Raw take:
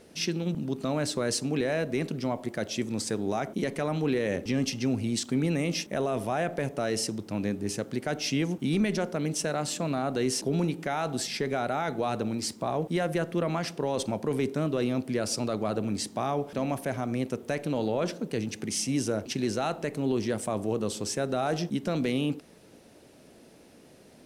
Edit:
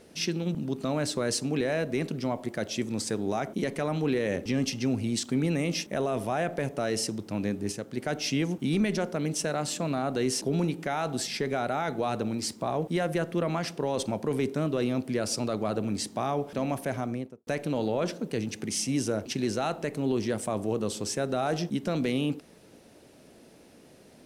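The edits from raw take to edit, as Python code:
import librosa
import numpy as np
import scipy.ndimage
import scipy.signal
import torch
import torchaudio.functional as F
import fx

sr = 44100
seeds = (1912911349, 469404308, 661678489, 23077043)

y = fx.studio_fade_out(x, sr, start_s=16.98, length_s=0.49)
y = fx.edit(y, sr, fx.clip_gain(start_s=7.72, length_s=0.25, db=-4.0), tone=tone)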